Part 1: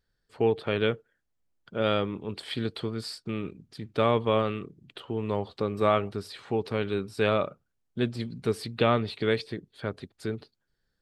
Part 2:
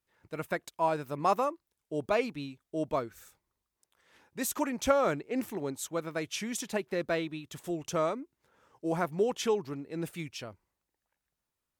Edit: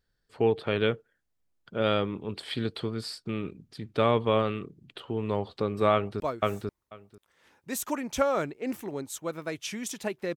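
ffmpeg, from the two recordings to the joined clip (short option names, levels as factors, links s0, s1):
-filter_complex "[0:a]apad=whole_dur=10.36,atrim=end=10.36,atrim=end=6.202[s0];[1:a]atrim=start=2.888:end=7.05[s1];[s0][s1]acrossfade=d=0.004:c1=hsin:c2=hsin,asplit=2[s2][s3];[s3]afade=t=in:st=5.93:d=0.01,afade=t=out:st=6.2:d=0.01,aecho=0:1:490|980:0.944061|0.0944061[s4];[s2][s4]amix=inputs=2:normalize=0"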